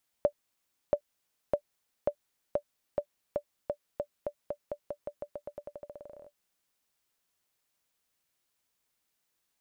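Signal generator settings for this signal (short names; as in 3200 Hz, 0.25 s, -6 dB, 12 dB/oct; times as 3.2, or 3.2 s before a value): bouncing ball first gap 0.68 s, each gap 0.89, 584 Hz, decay 77 ms -13.5 dBFS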